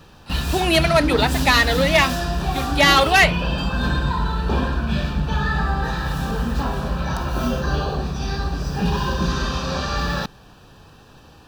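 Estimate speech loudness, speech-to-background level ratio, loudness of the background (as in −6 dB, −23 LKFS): −17.0 LKFS, 6.5 dB, −23.5 LKFS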